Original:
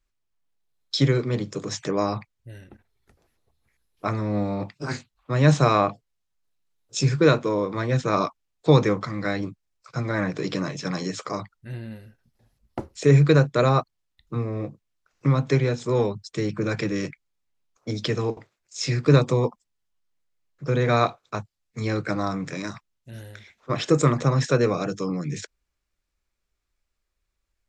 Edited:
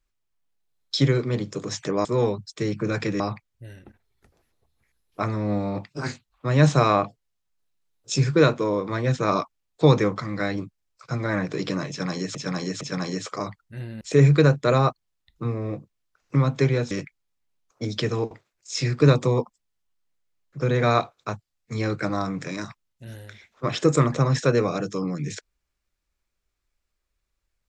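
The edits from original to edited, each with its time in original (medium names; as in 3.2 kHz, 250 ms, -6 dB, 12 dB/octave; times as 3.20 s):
10.74–11.20 s: loop, 3 plays
11.94–12.92 s: delete
15.82–16.97 s: move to 2.05 s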